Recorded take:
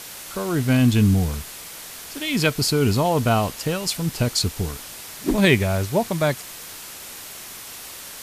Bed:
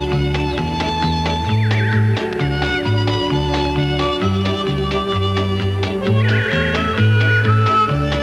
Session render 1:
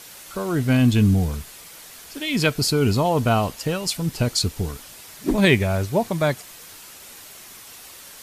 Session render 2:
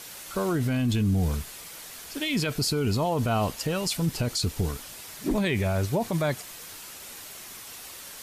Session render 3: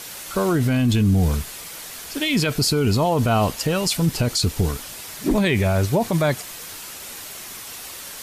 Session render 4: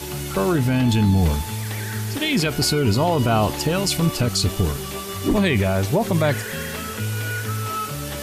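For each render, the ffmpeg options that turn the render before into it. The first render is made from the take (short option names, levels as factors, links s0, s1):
-af "afftdn=nr=6:nf=-38"
-af "alimiter=limit=0.133:level=0:latency=1:release=32"
-af "volume=2.11"
-filter_complex "[1:a]volume=0.237[s0];[0:a][s0]amix=inputs=2:normalize=0"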